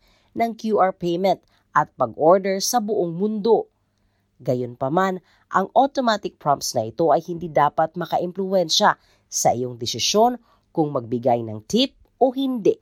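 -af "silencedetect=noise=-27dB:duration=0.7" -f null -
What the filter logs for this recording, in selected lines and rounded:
silence_start: 3.62
silence_end: 4.48 | silence_duration: 0.86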